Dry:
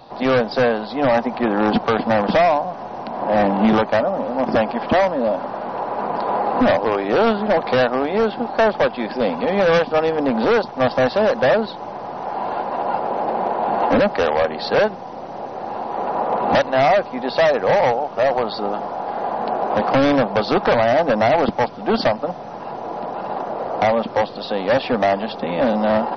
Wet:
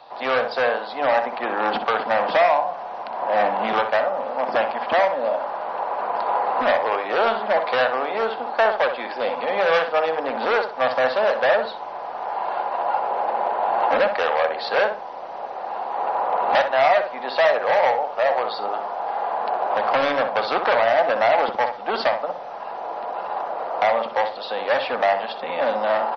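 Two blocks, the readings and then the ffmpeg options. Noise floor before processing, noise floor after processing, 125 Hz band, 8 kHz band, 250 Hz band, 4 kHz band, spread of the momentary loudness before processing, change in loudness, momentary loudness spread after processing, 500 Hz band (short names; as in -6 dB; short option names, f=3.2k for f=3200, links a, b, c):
-32 dBFS, -33 dBFS, under -15 dB, n/a, -15.0 dB, -1.5 dB, 10 LU, -2.5 dB, 10 LU, -3.5 dB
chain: -filter_complex "[0:a]acrossover=split=520 4900:gain=0.1 1 0.158[a][b][c];[a][b][c]amix=inputs=3:normalize=0,asplit=2[d][e];[e]adelay=62,lowpass=f=1.9k:p=1,volume=-6.5dB,asplit=2[f][g];[g]adelay=62,lowpass=f=1.9k:p=1,volume=0.31,asplit=2[h][i];[i]adelay=62,lowpass=f=1.9k:p=1,volume=0.31,asplit=2[j][k];[k]adelay=62,lowpass=f=1.9k:p=1,volume=0.31[l];[d][f][h][j][l]amix=inputs=5:normalize=0"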